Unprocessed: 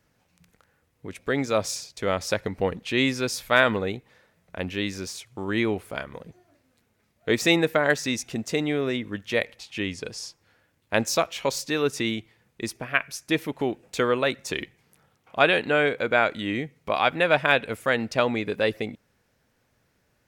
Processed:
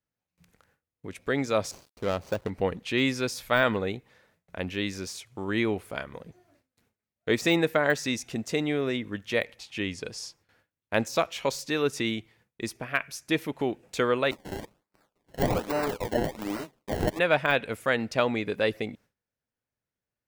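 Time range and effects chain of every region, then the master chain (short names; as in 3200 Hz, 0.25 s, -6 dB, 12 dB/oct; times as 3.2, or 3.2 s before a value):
1.71–2.5 median filter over 25 samples + sample gate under -53 dBFS
14.31–17.19 minimum comb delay 9.8 ms + HPF 200 Hz + decimation with a swept rate 25× 1.2 Hz
whole clip: de-esser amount 60%; gate with hold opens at -52 dBFS; gain -2 dB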